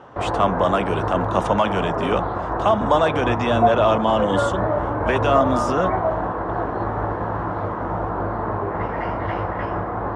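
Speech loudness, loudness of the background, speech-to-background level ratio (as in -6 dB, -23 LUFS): -22.0 LUFS, -24.0 LUFS, 2.0 dB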